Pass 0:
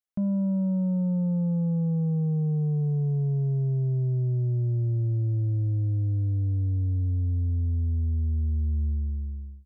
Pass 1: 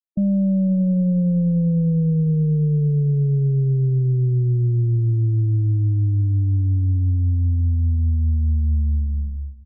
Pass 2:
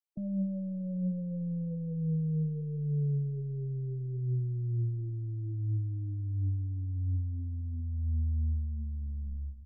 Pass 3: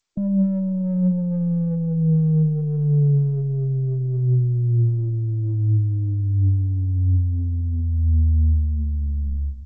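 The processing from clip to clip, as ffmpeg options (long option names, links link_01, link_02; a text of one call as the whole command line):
ffmpeg -i in.wav -filter_complex "[0:a]aeval=exprs='0.075*(cos(1*acos(clip(val(0)/0.075,-1,1)))-cos(1*PI/2))+0.00335*(cos(6*acos(clip(val(0)/0.075,-1,1)))-cos(6*PI/2))':channel_layout=same,afftfilt=real='re*gte(hypot(re,im),0.0398)':imag='im*gte(hypot(re,im),0.0398)':win_size=1024:overlap=0.75,asplit=2[link_01][link_02];[link_02]adelay=501.5,volume=-21dB,highshelf=frequency=4000:gain=-11.3[link_03];[link_01][link_03]amix=inputs=2:normalize=0,volume=7dB" out.wav
ffmpeg -i in.wav -af "alimiter=level_in=2.5dB:limit=-24dB:level=0:latency=1:release=23,volume=-2.5dB,flanger=delay=6.8:depth=6.4:regen=54:speed=0.66:shape=sinusoidal" out.wav
ffmpeg -i in.wav -filter_complex "[0:a]asplit=2[link_01][link_02];[link_02]adynamicsmooth=sensitivity=4.5:basefreq=550,volume=2dB[link_03];[link_01][link_03]amix=inputs=2:normalize=0,volume=6dB" -ar 16000 -c:a g722 out.g722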